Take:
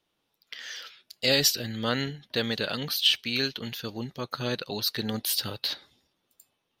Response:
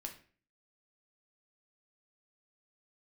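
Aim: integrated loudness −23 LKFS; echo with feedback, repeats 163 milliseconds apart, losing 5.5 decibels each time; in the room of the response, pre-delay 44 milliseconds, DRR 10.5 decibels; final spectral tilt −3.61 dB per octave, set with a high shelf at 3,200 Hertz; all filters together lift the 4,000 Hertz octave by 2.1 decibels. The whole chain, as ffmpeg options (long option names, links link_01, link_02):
-filter_complex "[0:a]highshelf=frequency=3200:gain=-5.5,equalizer=frequency=4000:width_type=o:gain=6.5,aecho=1:1:163|326|489|652|815|978|1141:0.531|0.281|0.149|0.079|0.0419|0.0222|0.0118,asplit=2[link_01][link_02];[1:a]atrim=start_sample=2205,adelay=44[link_03];[link_02][link_03]afir=irnorm=-1:irlink=0,volume=-7.5dB[link_04];[link_01][link_04]amix=inputs=2:normalize=0,volume=1.5dB"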